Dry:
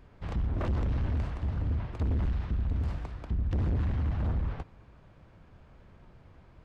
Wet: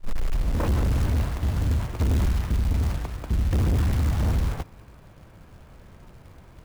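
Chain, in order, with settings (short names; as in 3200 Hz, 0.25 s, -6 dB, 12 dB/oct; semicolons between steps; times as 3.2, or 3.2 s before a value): tape start at the beginning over 0.71 s; short-mantissa float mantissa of 2-bit; gain +7 dB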